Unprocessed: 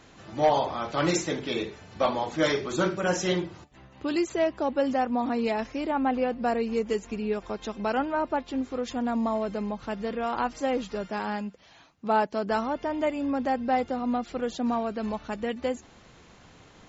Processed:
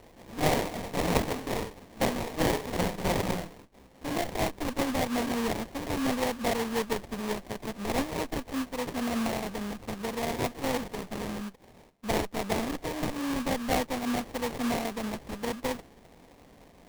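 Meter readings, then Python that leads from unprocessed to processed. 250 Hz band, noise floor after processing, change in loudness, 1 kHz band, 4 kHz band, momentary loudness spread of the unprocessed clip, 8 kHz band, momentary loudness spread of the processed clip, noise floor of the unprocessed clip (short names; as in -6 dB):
-2.5 dB, -56 dBFS, -3.0 dB, -5.0 dB, +1.0 dB, 7 LU, n/a, 7 LU, -54 dBFS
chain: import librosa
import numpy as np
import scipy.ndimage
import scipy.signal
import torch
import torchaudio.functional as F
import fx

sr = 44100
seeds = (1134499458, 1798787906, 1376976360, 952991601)

y = fx.lower_of_two(x, sr, delay_ms=4.2)
y = fx.peak_eq(y, sr, hz=6100.0, db=10.5, octaves=2.0)
y = fx.sample_hold(y, sr, seeds[0], rate_hz=1400.0, jitter_pct=20)
y = F.gain(torch.from_numpy(y), -2.5).numpy()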